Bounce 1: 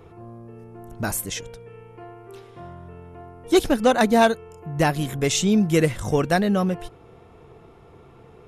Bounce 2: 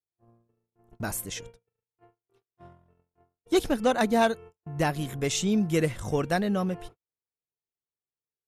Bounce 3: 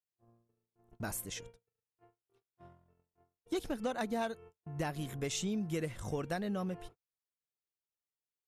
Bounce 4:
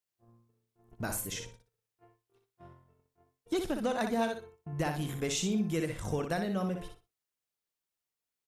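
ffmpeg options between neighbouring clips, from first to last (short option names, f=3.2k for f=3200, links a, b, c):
-af "agate=range=-52dB:threshold=-37dB:ratio=16:detection=peak,volume=-6dB"
-af "acompressor=threshold=-26dB:ratio=4,volume=-6.5dB"
-af "aecho=1:1:61|122|183:0.473|0.0994|0.0209,volume=3.5dB"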